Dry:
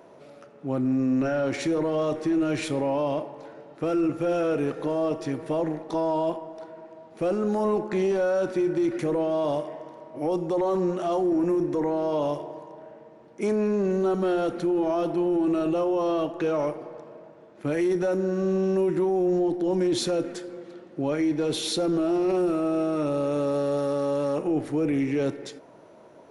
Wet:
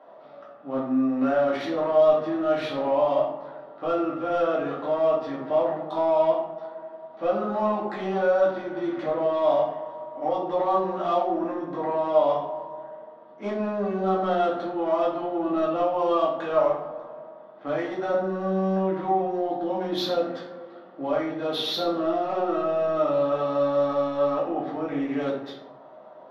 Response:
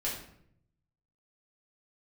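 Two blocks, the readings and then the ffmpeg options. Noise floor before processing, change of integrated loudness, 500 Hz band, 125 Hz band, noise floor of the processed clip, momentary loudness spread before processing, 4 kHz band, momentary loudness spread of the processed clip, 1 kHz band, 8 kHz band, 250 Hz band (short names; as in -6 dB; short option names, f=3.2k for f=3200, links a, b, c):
-50 dBFS, +0.5 dB, +1.5 dB, -4.5 dB, -47 dBFS, 12 LU, +2.0 dB, 13 LU, +6.5 dB, under -10 dB, -4.0 dB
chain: -filter_complex "[0:a]highpass=290,equalizer=f=320:t=q:w=4:g=-9,equalizer=f=460:t=q:w=4:g=-7,equalizer=f=710:t=q:w=4:g=6,equalizer=f=1.2k:t=q:w=4:g=7,equalizer=f=2.4k:t=q:w=4:g=-8,equalizer=f=3.5k:t=q:w=4:g=4,lowpass=f=5.1k:w=0.5412,lowpass=f=5.1k:w=1.3066,adynamicsmooth=sensitivity=2.5:basefreq=3k[a];[1:a]atrim=start_sample=2205,asetrate=48510,aresample=44100[b];[a][b]afir=irnorm=-1:irlink=0"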